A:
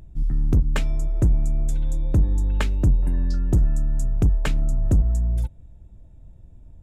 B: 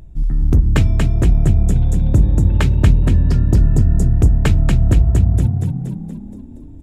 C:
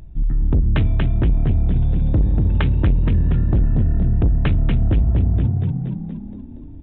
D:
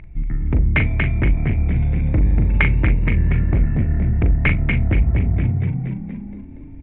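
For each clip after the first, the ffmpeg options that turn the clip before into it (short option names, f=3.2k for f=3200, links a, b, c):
-filter_complex "[0:a]asplit=8[a][b][c][d][e][f][g][h];[b]adelay=236,afreqshift=36,volume=-4dB[i];[c]adelay=472,afreqshift=72,volume=-9.4dB[j];[d]adelay=708,afreqshift=108,volume=-14.7dB[k];[e]adelay=944,afreqshift=144,volume=-20.1dB[l];[f]adelay=1180,afreqshift=180,volume=-25.4dB[m];[g]adelay=1416,afreqshift=216,volume=-30.8dB[n];[h]adelay=1652,afreqshift=252,volume=-36.1dB[o];[a][i][j][k][l][m][n][o]amix=inputs=8:normalize=0,volume=5dB"
-af "equalizer=f=480:w=1.5:g=-2.5,aresample=8000,asoftclip=type=tanh:threshold=-11dB,aresample=44100"
-filter_complex "[0:a]lowpass=f=2.2k:t=q:w=11,asplit=2[a][b];[b]adelay=40,volume=-8dB[c];[a][c]amix=inputs=2:normalize=0,volume=-1dB"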